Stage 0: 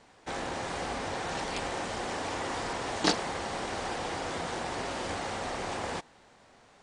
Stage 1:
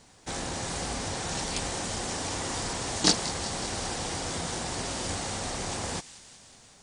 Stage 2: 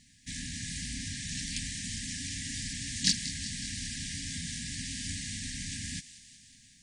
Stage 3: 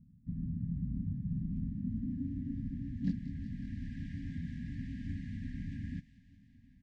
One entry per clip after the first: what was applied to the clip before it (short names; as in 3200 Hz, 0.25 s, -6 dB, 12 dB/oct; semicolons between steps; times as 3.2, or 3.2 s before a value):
tone controls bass +9 dB, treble +14 dB; thin delay 0.185 s, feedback 70%, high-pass 2400 Hz, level -14 dB; gain -2 dB
FFT band-reject 280–1600 Hz; in parallel at -11.5 dB: soft clip -15 dBFS, distortion -17 dB; on the sum: gain -5 dB
outdoor echo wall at 210 m, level -23 dB; low-pass sweep 180 Hz -> 770 Hz, 1.42–3.99; gain +1.5 dB